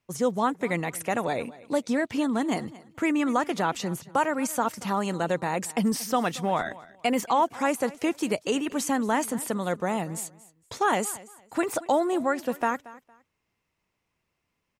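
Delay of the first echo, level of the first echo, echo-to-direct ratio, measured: 230 ms, -19.5 dB, -19.5 dB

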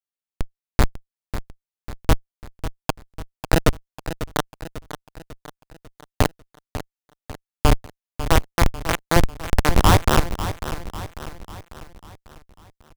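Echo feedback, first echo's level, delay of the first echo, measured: 50%, -12.0 dB, 546 ms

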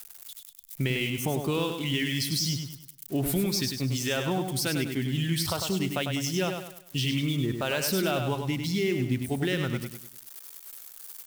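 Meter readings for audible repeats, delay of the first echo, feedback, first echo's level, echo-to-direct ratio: 4, 100 ms, 38%, -6.0 dB, -5.5 dB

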